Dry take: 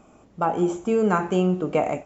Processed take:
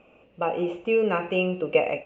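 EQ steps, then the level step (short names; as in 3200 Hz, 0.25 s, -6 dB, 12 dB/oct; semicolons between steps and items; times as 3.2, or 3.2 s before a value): synth low-pass 2700 Hz, resonance Q 13; bell 510 Hz +13.5 dB 0.47 oct; -8.0 dB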